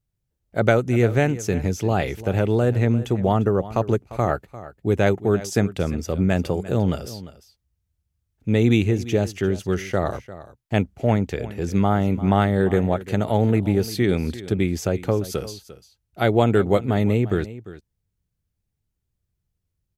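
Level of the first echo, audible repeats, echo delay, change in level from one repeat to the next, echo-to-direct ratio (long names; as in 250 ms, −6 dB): −16.0 dB, 1, 348 ms, repeats not evenly spaced, −16.0 dB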